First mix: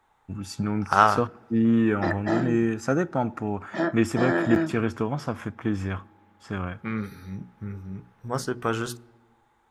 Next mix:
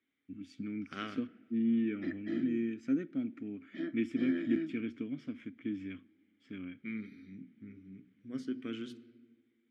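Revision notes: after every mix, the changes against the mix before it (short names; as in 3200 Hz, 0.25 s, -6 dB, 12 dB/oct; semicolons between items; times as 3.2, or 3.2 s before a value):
second voice: send +10.5 dB; master: add vowel filter i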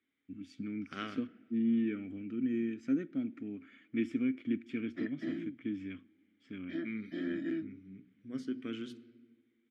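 background: entry +2.95 s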